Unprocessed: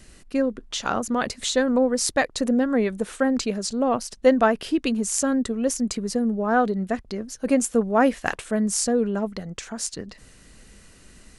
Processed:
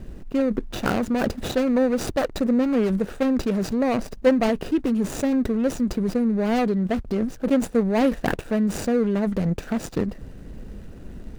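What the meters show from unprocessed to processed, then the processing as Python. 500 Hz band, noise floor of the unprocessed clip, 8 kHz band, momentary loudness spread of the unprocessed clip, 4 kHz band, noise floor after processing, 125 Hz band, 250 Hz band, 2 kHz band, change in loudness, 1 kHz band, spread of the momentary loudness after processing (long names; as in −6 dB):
0.0 dB, −51 dBFS, −11.5 dB, 10 LU, −5.5 dB, −41 dBFS, +7.0 dB, +2.0 dB, −3.5 dB, 0.0 dB, −4.0 dB, 8 LU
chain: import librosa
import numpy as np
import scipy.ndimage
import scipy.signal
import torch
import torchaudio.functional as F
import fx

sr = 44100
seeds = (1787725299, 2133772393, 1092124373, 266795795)

p1 = scipy.ndimage.median_filter(x, 41, mode='constant')
p2 = fx.over_compress(p1, sr, threshold_db=-34.0, ratio=-1.0)
y = p1 + F.gain(torch.from_numpy(p2), 2.5).numpy()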